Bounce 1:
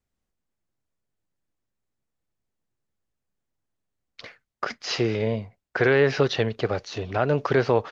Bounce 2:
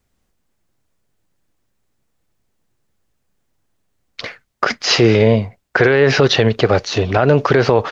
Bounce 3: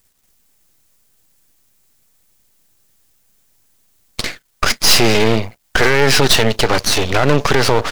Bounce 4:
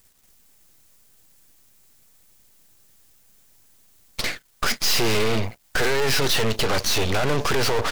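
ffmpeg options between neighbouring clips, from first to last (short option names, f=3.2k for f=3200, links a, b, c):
-af "alimiter=level_in=15dB:limit=-1dB:release=50:level=0:latency=1,volume=-1dB"
-af "crystalizer=i=4.5:c=0,acontrast=46,aeval=exprs='max(val(0),0)':c=same,volume=-1dB"
-af "aeval=exprs='(tanh(4.47*val(0)+0.45)-tanh(0.45))/4.47':c=same,volume=3.5dB"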